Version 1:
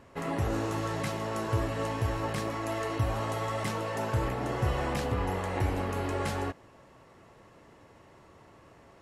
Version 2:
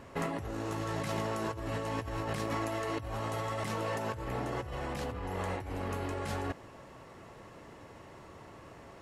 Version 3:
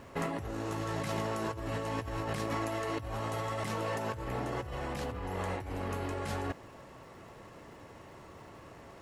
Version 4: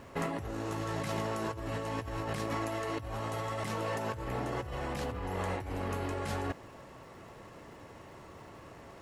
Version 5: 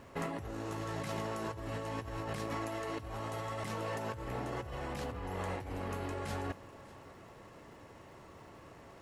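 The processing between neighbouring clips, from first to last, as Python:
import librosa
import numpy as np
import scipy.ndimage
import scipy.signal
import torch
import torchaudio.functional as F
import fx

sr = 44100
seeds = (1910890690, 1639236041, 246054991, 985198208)

y1 = fx.over_compress(x, sr, threshold_db=-36.0, ratio=-1.0)
y2 = fx.dmg_crackle(y1, sr, seeds[0], per_s=360.0, level_db=-57.0)
y3 = fx.rider(y2, sr, range_db=10, speed_s=2.0)
y4 = y3 + 10.0 ** (-19.0 / 20.0) * np.pad(y3, (int(598 * sr / 1000.0), 0))[:len(y3)]
y4 = F.gain(torch.from_numpy(y4), -3.5).numpy()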